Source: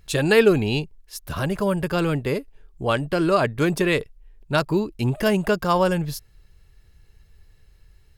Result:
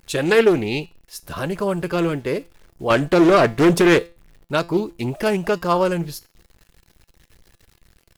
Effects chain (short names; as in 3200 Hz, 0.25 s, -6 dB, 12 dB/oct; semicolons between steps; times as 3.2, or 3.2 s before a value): EQ curve 120 Hz 0 dB, 360 Hz +7 dB, 1600 Hz +5 dB; 2.9–3.99 sample leveller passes 2; bit-crush 8-bit; resonator 170 Hz, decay 0.3 s, harmonics all, mix 50%; Doppler distortion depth 0.32 ms